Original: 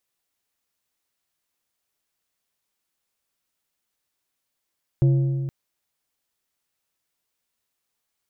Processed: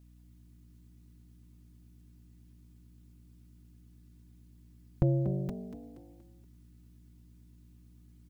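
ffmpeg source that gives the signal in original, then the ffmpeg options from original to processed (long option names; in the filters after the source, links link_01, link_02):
-f lavfi -i "aevalsrc='0.224*pow(10,-3*t/2.18)*sin(2*PI*136*t)+0.0631*pow(10,-3*t/1.656)*sin(2*PI*340*t)+0.0178*pow(10,-3*t/1.438)*sin(2*PI*544*t)+0.00501*pow(10,-3*t/1.345)*sin(2*PI*680*t)+0.00141*pow(10,-3*t/1.243)*sin(2*PI*884*t)':duration=0.47:sample_rate=44100"
-filter_complex "[0:a]aecho=1:1:4.1:0.81,aeval=exprs='val(0)+0.00158*(sin(2*PI*60*n/s)+sin(2*PI*2*60*n/s)/2+sin(2*PI*3*60*n/s)/3+sin(2*PI*4*60*n/s)/4+sin(2*PI*5*60*n/s)/5)':channel_layout=same,asplit=2[link_01][link_02];[link_02]asplit=4[link_03][link_04][link_05][link_06];[link_03]adelay=237,afreqshift=51,volume=-10.5dB[link_07];[link_04]adelay=474,afreqshift=102,volume=-18dB[link_08];[link_05]adelay=711,afreqshift=153,volume=-25.6dB[link_09];[link_06]adelay=948,afreqshift=204,volume=-33.1dB[link_10];[link_07][link_08][link_09][link_10]amix=inputs=4:normalize=0[link_11];[link_01][link_11]amix=inputs=2:normalize=0"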